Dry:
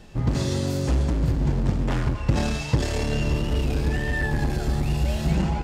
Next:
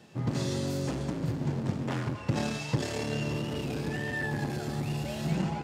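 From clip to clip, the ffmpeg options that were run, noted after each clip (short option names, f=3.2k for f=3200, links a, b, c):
-af "highpass=f=110:w=0.5412,highpass=f=110:w=1.3066,volume=-5dB"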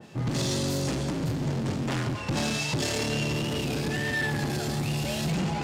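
-af "areverse,acompressor=mode=upward:threshold=-34dB:ratio=2.5,areverse,asoftclip=type=tanh:threshold=-29.5dB,adynamicequalizer=threshold=0.00178:dfrequency=2200:dqfactor=0.7:tfrequency=2200:tqfactor=0.7:attack=5:release=100:ratio=0.375:range=3:mode=boostabove:tftype=highshelf,volume=6dB"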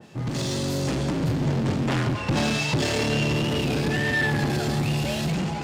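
-filter_complex "[0:a]acrossover=split=4300[a][b];[a]dynaudnorm=f=340:g=5:m=5dB[c];[b]asoftclip=type=tanh:threshold=-30.5dB[d];[c][d]amix=inputs=2:normalize=0"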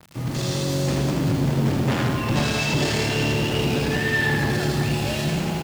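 -filter_complex "[0:a]aecho=1:1:80|200|380|650|1055:0.631|0.398|0.251|0.158|0.1,acrossover=split=140[a][b];[b]acrusher=bits=6:mix=0:aa=0.000001[c];[a][c]amix=inputs=2:normalize=0"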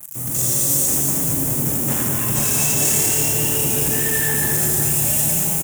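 -af "aexciter=amount=14.5:drive=8.1:freq=6.8k,flanger=delay=4.6:depth=6.7:regen=-67:speed=1.7:shape=sinusoidal,aecho=1:1:225:0.596"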